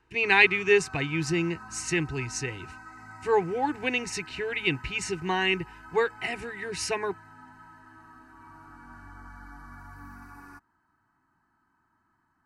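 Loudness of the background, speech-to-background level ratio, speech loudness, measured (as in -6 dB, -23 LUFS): -46.5 LUFS, 19.5 dB, -27.0 LUFS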